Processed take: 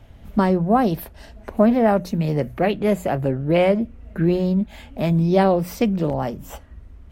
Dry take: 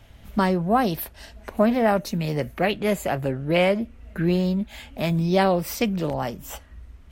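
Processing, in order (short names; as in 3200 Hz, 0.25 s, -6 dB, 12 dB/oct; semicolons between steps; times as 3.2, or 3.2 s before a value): tilt shelf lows +5 dB, about 1200 Hz; notches 60/120/180 Hz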